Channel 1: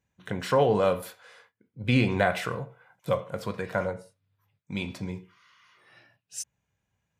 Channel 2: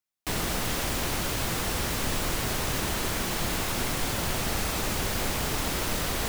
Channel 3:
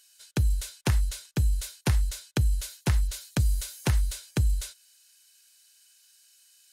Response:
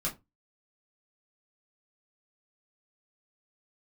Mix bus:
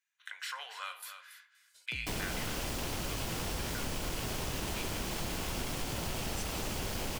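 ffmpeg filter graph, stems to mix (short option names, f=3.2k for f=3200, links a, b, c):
-filter_complex "[0:a]highpass=f=1.4k:w=0.5412,highpass=f=1.4k:w=1.3066,acontrast=85,volume=-9dB,asplit=2[a][b];[b]volume=-12dB[c];[1:a]bandreject=f=1.2k:w=28,afwtdn=0.0178,highshelf=f=3k:t=q:w=1.5:g=13,adelay=1800,volume=1.5dB[d];[2:a]asoftclip=type=hard:threshold=-26dB,adelay=1550,volume=-11dB[e];[c]aecho=0:1:280:1[f];[a][d][e][f]amix=inputs=4:normalize=0,acompressor=threshold=-37dB:ratio=2.5"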